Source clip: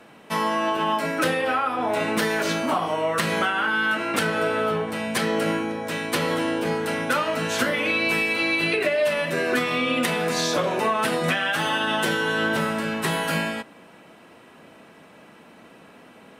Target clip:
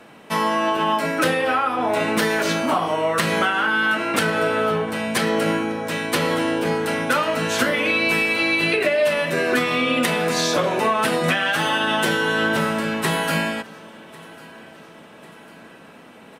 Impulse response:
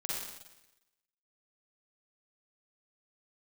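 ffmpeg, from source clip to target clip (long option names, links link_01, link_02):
-af "aecho=1:1:1098|2196|3294|4392:0.0708|0.0389|0.0214|0.0118,volume=3dB"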